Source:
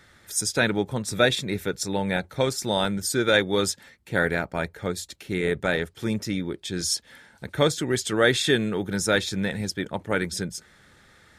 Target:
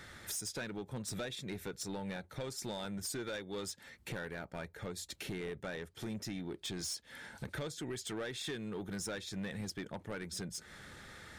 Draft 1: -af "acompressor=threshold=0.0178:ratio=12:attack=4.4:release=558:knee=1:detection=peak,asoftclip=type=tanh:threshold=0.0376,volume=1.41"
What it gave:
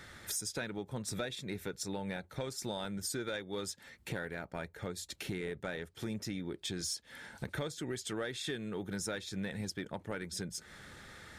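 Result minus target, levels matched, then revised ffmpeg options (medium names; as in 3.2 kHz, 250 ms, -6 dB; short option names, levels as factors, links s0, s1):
saturation: distortion -11 dB
-af "acompressor=threshold=0.0178:ratio=12:attack=4.4:release=558:knee=1:detection=peak,asoftclip=type=tanh:threshold=0.0141,volume=1.41"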